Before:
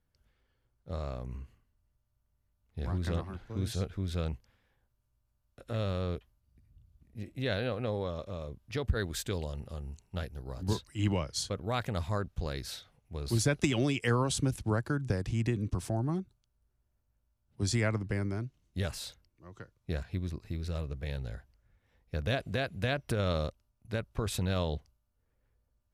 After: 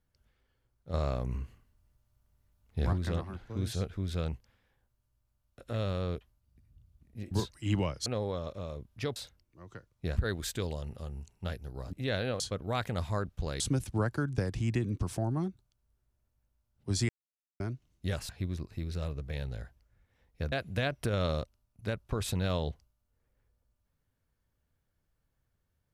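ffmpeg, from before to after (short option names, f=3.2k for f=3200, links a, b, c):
-filter_complex "[0:a]asplit=14[a][b][c][d][e][f][g][h][i][j][k][l][m][n];[a]atrim=end=0.942[o];[b]atrim=start=0.938:end=2.932,asetpts=PTS-STARTPTS,volume=6dB[p];[c]atrim=start=2.928:end=7.312[q];[d]atrim=start=10.638:end=11.392[r];[e]atrim=start=7.778:end=8.882[s];[f]atrim=start=19.008:end=20.022[t];[g]atrim=start=8.878:end=10.642[u];[h]atrim=start=7.308:end=7.782[v];[i]atrim=start=11.388:end=12.592[w];[j]atrim=start=14.318:end=17.81,asetpts=PTS-STARTPTS,afade=t=out:st=3.488:d=0.004:c=hsin[x];[k]atrim=start=17.81:end=18.32,asetpts=PTS-STARTPTS,volume=0[y];[l]atrim=start=18.32:end=19.012,asetpts=PTS-STARTPTS,afade=t=in:d=0.004:c=hsin[z];[m]atrim=start=20.018:end=22.252[aa];[n]atrim=start=22.578[ab];[o][p]acrossfade=d=0.004:c1=hsin:c2=hsin[ac];[ac][q]acrossfade=d=0.004:c1=hsin:c2=hsin[ad];[ad][r]acrossfade=d=0.004:c1=hsin:c2=hsin[ae];[ae][s]acrossfade=d=0.004:c1=hsin:c2=hsin[af];[af][t]acrossfade=d=0.004:c1=hsin:c2=hsin[ag];[ag][u]acrossfade=d=0.004:c1=hsin:c2=hsin[ah];[ah][v]acrossfade=d=0.004:c1=hsin:c2=hsin[ai];[ai][w]acrossfade=d=0.004:c1=hsin:c2=hsin[aj];[x][y][z]concat=n=3:v=0:a=1[ak];[aj][ak]acrossfade=d=0.004:c1=hsin:c2=hsin[al];[al][aa]acrossfade=d=0.004:c1=hsin:c2=hsin[am];[am][ab]acrossfade=d=0.004:c1=hsin:c2=hsin"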